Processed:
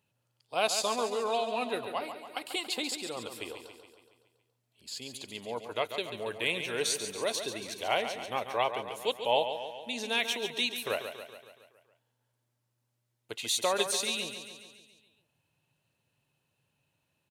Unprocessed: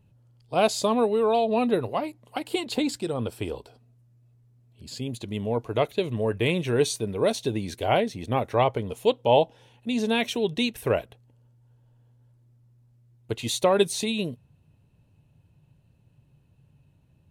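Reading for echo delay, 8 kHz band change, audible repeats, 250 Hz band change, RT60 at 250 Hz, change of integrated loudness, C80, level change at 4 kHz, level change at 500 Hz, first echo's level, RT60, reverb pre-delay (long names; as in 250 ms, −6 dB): 140 ms, +0.5 dB, 6, −14.5 dB, no reverb audible, −6.5 dB, no reverb audible, 0.0 dB, −9.0 dB, −9.0 dB, no reverb audible, no reverb audible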